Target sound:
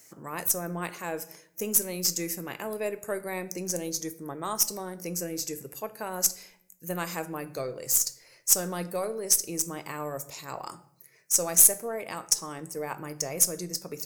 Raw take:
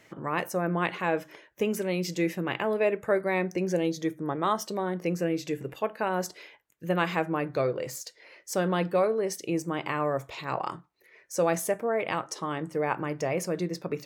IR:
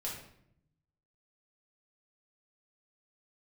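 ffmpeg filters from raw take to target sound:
-filter_complex "[0:a]aexciter=amount=10.4:drive=6.1:freq=5000,aeval=exprs='1.19*(cos(1*acos(clip(val(0)/1.19,-1,1)))-cos(1*PI/2))+0.0668*(cos(7*acos(clip(val(0)/1.19,-1,1)))-cos(7*PI/2))+0.0106*(cos(8*acos(clip(val(0)/1.19,-1,1)))-cos(8*PI/2))':channel_layout=same,asplit=2[link_01][link_02];[1:a]atrim=start_sample=2205[link_03];[link_02][link_03]afir=irnorm=-1:irlink=0,volume=-11.5dB[link_04];[link_01][link_04]amix=inputs=2:normalize=0,volume=-4dB"

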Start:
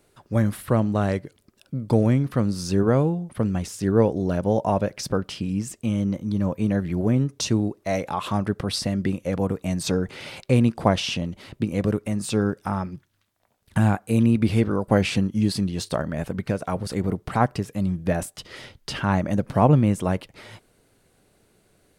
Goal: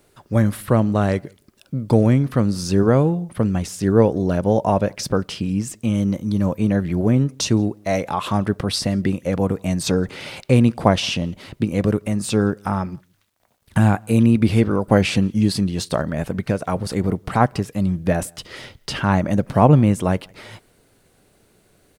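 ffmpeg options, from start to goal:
ffmpeg -i in.wav -filter_complex "[0:a]asettb=1/sr,asplit=3[link_01][link_02][link_03];[link_01]atrim=end=5.944[link_04];[link_02]atrim=start=5.94:end=6.58,asetpts=PTS-STARTPTS,afade=type=in:duration=0.004:curve=qsin,afade=type=out:start_time=0.636:duration=0.004:curve=qsin,highshelf=frequency=6100:gain=7[link_05];[link_03]atrim=start=6.576[link_06];[link_04][link_05]acrossfade=duration=0.004:curve1=hsin:curve2=qsin[link_07];[link_07][link_06]acrossfade=duration=0.004:curve1=qsin:curve2=hsin,acrusher=bits=11:mix=0:aa=0.000001,asplit=2[link_08][link_09];[link_09]adelay=169.1,volume=-30dB,highshelf=frequency=4000:gain=-3.8[link_10];[link_08][link_10]amix=inputs=2:normalize=0,volume=4dB" out.wav

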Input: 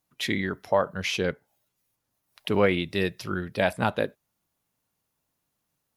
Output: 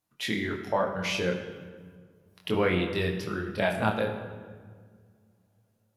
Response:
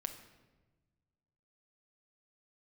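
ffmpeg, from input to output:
-filter_complex "[0:a]flanger=delay=22.5:depth=6:speed=0.36[link_01];[1:a]atrim=start_sample=2205,asetrate=28224,aresample=44100[link_02];[link_01][link_02]afir=irnorm=-1:irlink=0"

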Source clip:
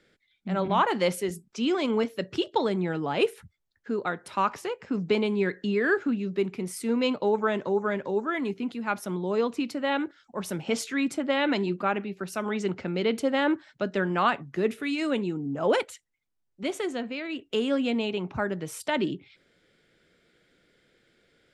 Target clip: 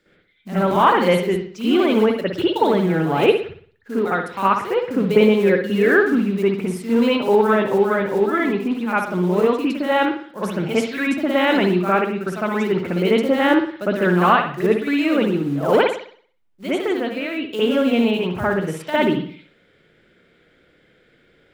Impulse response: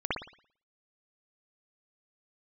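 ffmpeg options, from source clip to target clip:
-filter_complex "[0:a]asettb=1/sr,asplit=3[link_01][link_02][link_03];[link_01]atrim=end=4.664[link_04];[link_02]atrim=start=4.66:end=5.83,asetpts=PTS-STARTPTS,afade=type=in:duration=0.004:curve=qsin,afade=type=out:start_time=1.166:duration=0.004:curve=qsin,equalizer=frequency=530:width_type=o:width=0.21:gain=12[link_05];[link_03]atrim=start=5.826[link_06];[link_04][link_05]acrossfade=duration=0.004:curve1=hsin:curve2=qsin[link_07];[link_07][link_06]acrossfade=duration=0.004:curve1=qsin:curve2=hsin,acrusher=bits=5:mode=log:mix=0:aa=0.000001[link_08];[1:a]atrim=start_sample=2205[link_09];[link_08][link_09]afir=irnorm=-1:irlink=0"

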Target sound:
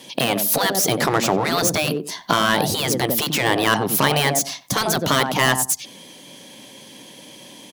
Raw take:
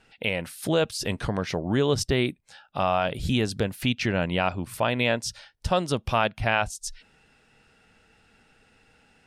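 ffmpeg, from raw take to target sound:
ffmpeg -i in.wav -filter_complex "[0:a]asplit=2[link_01][link_02];[link_02]acompressor=threshold=-37dB:ratio=6,volume=3dB[link_03];[link_01][link_03]amix=inputs=2:normalize=0,aeval=exprs='0.501*sin(PI/2*2*val(0)/0.501)':channel_layout=same,highpass=frequency=130:width=0.5412,highpass=frequency=130:width=1.3066,asetrate=52920,aresample=44100,acrossover=split=2100[link_04][link_05];[link_04]adynamicsmooth=sensitivity=2:basefreq=860[link_06];[link_05]asoftclip=type=tanh:threshold=-23.5dB[link_07];[link_06][link_07]amix=inputs=2:normalize=0,highshelf=frequency=8500:gain=9.5,asplit=2[link_08][link_09];[link_09]adelay=92,lowpass=frequency=1000:poles=1,volume=-10.5dB,asplit=2[link_10][link_11];[link_11]adelay=92,lowpass=frequency=1000:poles=1,volume=0.21,asplit=2[link_12][link_13];[link_13]adelay=92,lowpass=frequency=1000:poles=1,volume=0.21[link_14];[link_08][link_10][link_12][link_14]amix=inputs=4:normalize=0,afftfilt=real='re*lt(hypot(re,im),0.708)':imag='im*lt(hypot(re,im),0.708)':win_size=1024:overlap=0.75,volume=2.5dB" out.wav

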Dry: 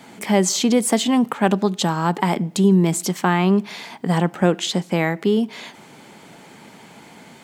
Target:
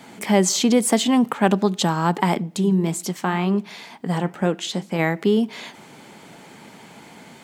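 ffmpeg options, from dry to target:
ffmpeg -i in.wav -filter_complex "[0:a]asplit=3[link_01][link_02][link_03];[link_01]afade=type=out:start_time=2.38:duration=0.02[link_04];[link_02]flanger=delay=3.6:depth=5.9:regen=-72:speed=2:shape=sinusoidal,afade=type=in:start_time=2.38:duration=0.02,afade=type=out:start_time=4.98:duration=0.02[link_05];[link_03]afade=type=in:start_time=4.98:duration=0.02[link_06];[link_04][link_05][link_06]amix=inputs=3:normalize=0" out.wav

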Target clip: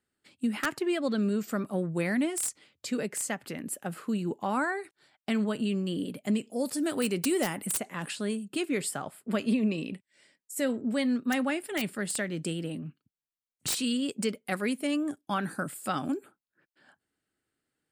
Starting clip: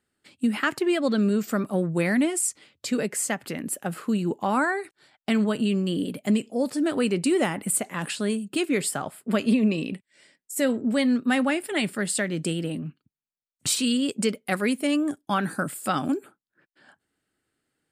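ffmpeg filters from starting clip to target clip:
ffmpeg -i in.wav -filter_complex "[0:a]asettb=1/sr,asplit=3[link_01][link_02][link_03];[link_01]atrim=end=6.504[link_04];[link_02]atrim=start=6.5:end=7.67,asetpts=PTS-STARTPTS,afade=type=in:duration=0.004:curve=qsin,afade=type=out:start_time=1.166:duration=0.004:curve=qsin,aemphasis=mode=production:type=50kf[link_05];[link_03]atrim=start=7.666[link_06];[link_04][link_05]acrossfade=duration=0.004:curve1=hsin:curve2=qsin[link_07];[link_07][link_06]acrossfade=duration=0.004:curve1=qsin:curve2=hsin,acrossover=split=1200[link_08][link_09];[link_09]aeval=exprs='(mod(6.31*val(0)+1,2)-1)/6.31':channel_layout=same[link_10];[link_08][link_10]amix=inputs=2:normalize=0,volume=-5.5dB" out.wav

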